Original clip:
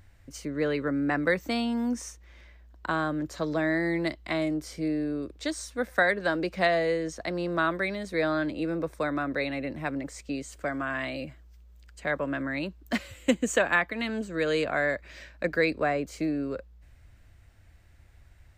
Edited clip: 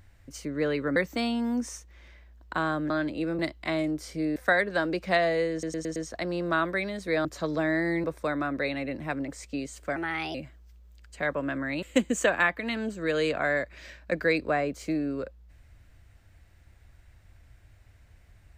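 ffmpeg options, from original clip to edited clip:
-filter_complex "[0:a]asplit=14[a][b][c][d][e][f][g][h][i][j][k][l][m][n];[a]atrim=end=0.962[o];[b]atrim=start=1.288:end=3.232[p];[c]atrim=start=8.308:end=8.802[q];[d]atrim=start=4.018:end=4.992[r];[e]atrim=start=5.858:end=7.132[s];[f]atrim=start=7.018:end=7.132[t];[g]atrim=start=7.018:end=7.132[u];[h]atrim=start=7.018:end=7.132[v];[i]atrim=start=7.018:end=8.312[w];[j]atrim=start=3.228:end=4.022[x];[k]atrim=start=8.798:end=10.724[y];[l]atrim=start=10.72:end=11.19,asetpts=PTS-STARTPTS,asetrate=53802,aresample=44100,atrim=end_sample=16989,asetpts=PTS-STARTPTS[z];[m]atrim=start=11.186:end=12.672[aa];[n]atrim=start=13.148[ab];[o][p]acrossfade=d=0.004:c1=hsin:c2=hsin[ac];[ac][q]acrossfade=d=0.004:c1=hsin:c2=hsin[ad];[ad][r]acrossfade=d=0.004:c1=hsin:c2=hsin[ae];[ae][s]acrossfade=d=0.004:c1=hsin:c2=hsin[af];[af][t]acrossfade=d=0.004:c1=hsin:c2=hsin[ag];[ag][u]acrossfade=d=0.004:c1=hsin:c2=hsin[ah];[ah][v]acrossfade=d=0.004:c1=hsin:c2=hsin[ai];[ai][w]acrossfade=d=0.004:c1=hsin:c2=hsin[aj];[aj][x]acrossfade=d=0.004:c1=hsin:c2=hsin[ak];[ak][y]acrossfade=d=0.004:c1=hsin:c2=hsin[al];[al][z]acrossfade=d=0.004:c1=hsin:c2=hsin[am];[am][aa]acrossfade=d=0.004:c1=hsin:c2=hsin[an];[an][ab]acrossfade=d=0.004:c1=hsin:c2=hsin"

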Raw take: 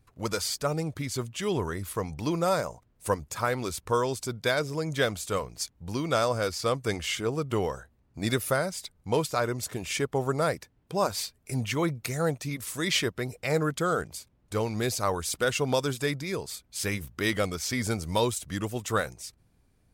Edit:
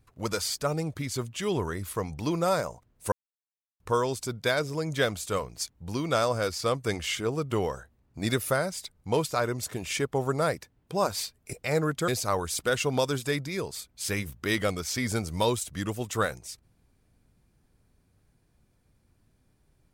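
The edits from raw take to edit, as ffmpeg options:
-filter_complex "[0:a]asplit=5[a][b][c][d][e];[a]atrim=end=3.12,asetpts=PTS-STARTPTS,afade=t=out:st=3.116:d=0.004:c=hsin[f];[b]atrim=start=3.12:end=3.8,asetpts=PTS-STARTPTS,volume=0[g];[c]atrim=start=3.8:end=11.532,asetpts=PTS-STARTPTS,afade=t=in:d=0.004:c=hsin[h];[d]atrim=start=13.318:end=13.872[i];[e]atrim=start=14.828[j];[f][g][h]concat=n=3:v=0:a=1[k];[k][i]acrossfade=d=0.004:c1=hsin:c2=hsin[l];[l][j]acrossfade=d=0.004:c1=hsin:c2=hsin"

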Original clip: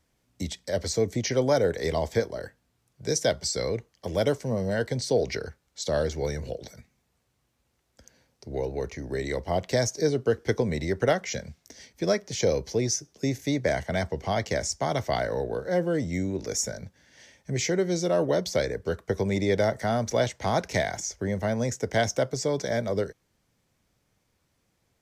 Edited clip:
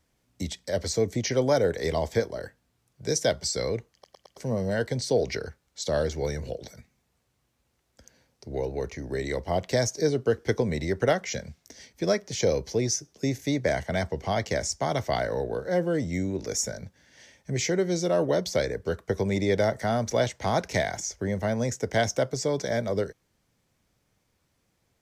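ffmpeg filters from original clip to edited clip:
-filter_complex "[0:a]asplit=5[a][b][c][d][e];[a]atrim=end=4.042[f];[b]atrim=start=3.928:end=4.042[g];[c]atrim=start=3.928:end=4.042[h];[d]atrim=start=3.928:end=4.042[i];[e]atrim=start=4.368[j];[f][g]acrossfade=d=0.004:c1=hsin:c2=hsin[k];[k][h]acrossfade=d=0.004:c1=hsin:c2=hsin[l];[l][i]acrossfade=d=0.004:c1=hsin:c2=hsin[m];[m][j]acrossfade=d=0.004:c1=hsin:c2=hsin"

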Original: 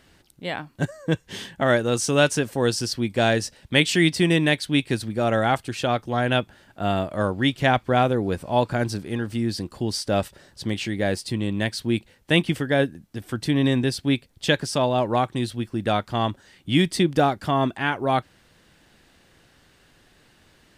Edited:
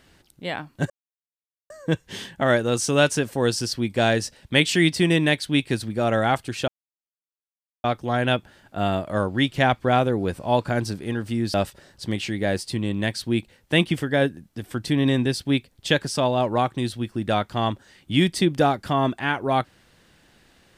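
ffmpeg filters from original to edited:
-filter_complex "[0:a]asplit=4[a][b][c][d];[a]atrim=end=0.9,asetpts=PTS-STARTPTS,afade=t=out:st=0.896:d=0.004:c=hsin,apad=pad_dur=0.8[e];[b]atrim=start=0.9:end=5.88,asetpts=PTS-STARTPTS,afade=t=in:d=0.004:c=hsin,afade=t=out:st=4.976:d=0.004:c=hsin,apad=pad_dur=1.16[f];[c]atrim=start=5.88:end=9.582,asetpts=PTS-STARTPTS,afade=t=in:d=0.004:c=hsin[g];[d]atrim=start=10.118[h];[e][f][g]concat=n=3:v=0:a=1[i];[i][h]acrossfade=d=0.004:c1=hsin:c2=hsin"

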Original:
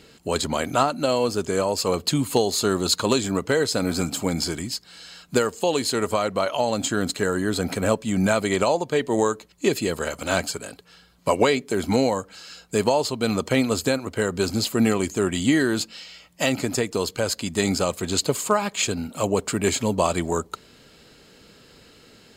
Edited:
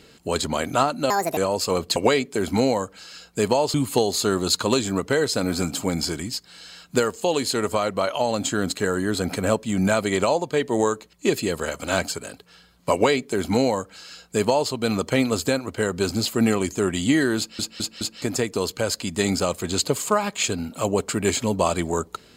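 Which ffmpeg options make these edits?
-filter_complex "[0:a]asplit=9[a][b][c][d][e][f][g][h][i];[a]atrim=end=1.104[j];[b]atrim=start=1.1:end=1.54,asetpts=PTS-STARTPTS,asetrate=71883,aresample=44100,atrim=end_sample=11904,asetpts=PTS-STARTPTS[k];[c]atrim=start=1.536:end=2.132[l];[d]atrim=start=11.318:end=13.102[m];[e]atrim=start=2.128:end=15.982[n];[f]atrim=start=15.768:end=15.982[o];[g]atrim=start=15.768:end=15.982[p];[h]atrim=start=15.768:end=15.982[q];[i]atrim=start=16.608[r];[j][k]acrossfade=d=0.004:c1=hsin:c2=hsin[s];[s][l]acrossfade=d=0.004:c1=hsin:c2=hsin[t];[t][m]acrossfade=d=0.004:c1=hsin:c2=hsin[u];[u][n]acrossfade=d=0.004:c1=hsin:c2=hsin[v];[v][o]acrossfade=d=0.004:c1=hsin:c2=hsin[w];[w][p]acrossfade=d=0.004:c1=hsin:c2=hsin[x];[x][q]acrossfade=d=0.004:c1=hsin:c2=hsin[y];[y][r]acrossfade=d=0.004:c1=hsin:c2=hsin"

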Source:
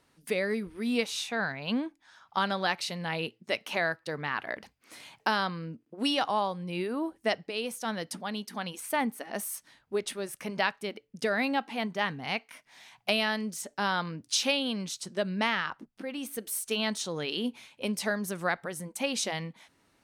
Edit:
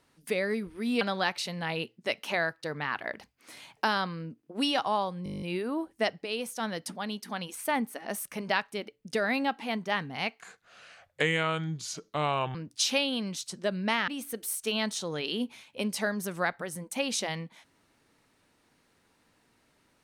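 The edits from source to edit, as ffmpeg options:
-filter_complex "[0:a]asplit=15[a][b][c][d][e][f][g][h][i][j][k][l][m][n][o];[a]atrim=end=1.012[p];[b]atrim=start=2.438:end=6.692[q];[c]atrim=start=6.668:end=6.692[r];[d]atrim=start=6.668:end=6.692[s];[e]atrim=start=6.668:end=6.692[t];[f]atrim=start=6.668:end=6.692[u];[g]atrim=start=6.668:end=6.692[v];[h]atrim=start=6.668:end=6.692[w];[i]atrim=start=6.668:end=6.692[x];[j]atrim=start=6.668:end=6.692[y];[k]atrim=start=6.668:end=9.492[z];[l]atrim=start=10.328:end=12.494[aa];[m]atrim=start=12.49:end=14.08,asetpts=PTS-STARTPTS,asetrate=32634,aresample=44100,atrim=end_sample=94755,asetpts=PTS-STARTPTS[ab];[n]atrim=start=14.076:end=15.612[ac];[o]atrim=start=16.118[ad];[p][q]acrossfade=d=0.004:c1=hsin:c2=hsin[ae];[ae][r]acrossfade=d=0.004:c1=hsin:c2=hsin[af];[af][s]acrossfade=d=0.004:c1=hsin:c2=hsin[ag];[ag][t]acrossfade=d=0.004:c1=hsin:c2=hsin[ah];[ah][u]acrossfade=d=0.004:c1=hsin:c2=hsin[ai];[ai][v]acrossfade=d=0.004:c1=hsin:c2=hsin[aj];[aj][w]acrossfade=d=0.004:c1=hsin:c2=hsin[ak];[ak][x]acrossfade=d=0.004:c1=hsin:c2=hsin[al];[al][y]acrossfade=d=0.004:c1=hsin:c2=hsin[am];[am][z]acrossfade=d=0.004:c1=hsin:c2=hsin[an];[an][aa]acrossfade=d=0.004:c1=hsin:c2=hsin[ao];[ao][ab]acrossfade=d=0.004:c1=hsin:c2=hsin[ap];[ap][ac]acrossfade=d=0.004:c1=hsin:c2=hsin[aq];[aq][ad]acrossfade=d=0.004:c1=hsin:c2=hsin"

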